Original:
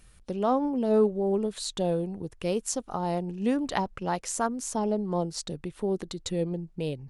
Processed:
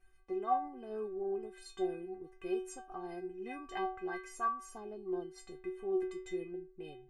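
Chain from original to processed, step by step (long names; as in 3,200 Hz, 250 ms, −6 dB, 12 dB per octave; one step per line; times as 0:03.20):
high shelf with overshoot 3,000 Hz −10.5 dB, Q 1.5
stiff-string resonator 370 Hz, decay 0.43 s, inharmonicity 0.008
level +9 dB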